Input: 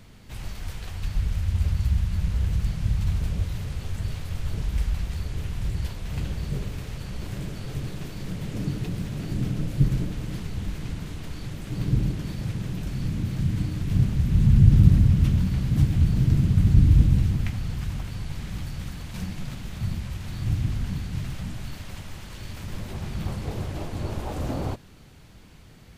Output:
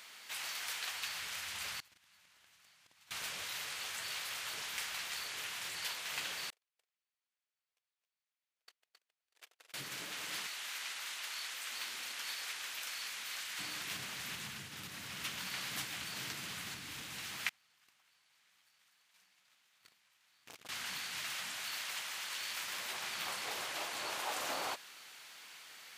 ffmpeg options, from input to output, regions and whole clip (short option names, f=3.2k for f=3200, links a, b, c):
-filter_complex "[0:a]asettb=1/sr,asplit=3[a][b][c];[a]atrim=end=1.804[d];[b]atrim=start=1.8:end=3.11,asetpts=PTS-STARTPTS,afade=t=in:d=0.004:c=qsin,afade=t=out:st=1.306:d=0.004:c=qsin,agate=range=-24dB:threshold=-18dB:ratio=16:release=100:detection=peak,equalizer=f=480:t=o:w=0.22:g=-6.5,acompressor=threshold=-40dB:ratio=3:attack=3.2:release=140:knee=1:detection=peak[e];[c]atrim=start=3.106[f];[d][e]acrossfade=d=0.004:c1=hsin:c2=qsin[g];[g][f]acrossfade=d=0.004:c1=qsin:c2=hsin,asettb=1/sr,asplit=3[h][i][j];[h]atrim=end=6.504[k];[i]atrim=start=6.5:end=9.74,asetpts=PTS-STARTPTS,afade=t=in:d=0.004:c=qsin,afade=t=out:st=3.236:d=0.004:c=qsin,agate=range=-56dB:threshold=-22dB:ratio=16:release=100:detection=peak,highpass=f=470:w=0.5412,highpass=f=470:w=1.3066,aecho=1:1:267:0.501,atrim=end_sample=142884[l];[j]atrim=start=9.736[m];[k][l]acrossfade=d=0.004:c1=hsin:c2=qsin[n];[n][m]acrossfade=d=0.004:c1=qsin:c2=hsin,asettb=1/sr,asplit=3[o][p][q];[o]atrim=end=10.464[r];[p]atrim=start=10.46:end=13.59,asetpts=PTS-STARTPTS,afade=t=in:d=0.004:c=qsin,afade=t=out:st=3.126:d=0.004:c=qsin,highpass=f=840:p=1,afreqshift=-69[s];[q]atrim=start=13.586[t];[r][s]acrossfade=d=0.004:c1=hsin:c2=qsin[u];[u][t]acrossfade=d=0.004:c1=qsin:c2=hsin,asettb=1/sr,asplit=3[v][w][x];[v]atrim=end=17.494[y];[w]atrim=start=17.49:end=20.69,asetpts=PTS-STARTPTS,afade=t=in:d=0.004:c=qsin,afade=t=out:st=3.196:d=0.004:c=qsin,agate=range=-25dB:threshold=-23dB:ratio=16:release=100:detection=peak,aeval=exprs='(tanh(39.8*val(0)+0.8)-tanh(0.8))/39.8':c=same[z];[x]atrim=start=20.686[aa];[y][z]acrossfade=d=0.004:c1=hsin:c2=qsin[ab];[ab][aa]acrossfade=d=0.004:c1=qsin:c2=hsin,alimiter=limit=-12dB:level=0:latency=1:release=395,highpass=1.3k,volume=6dB"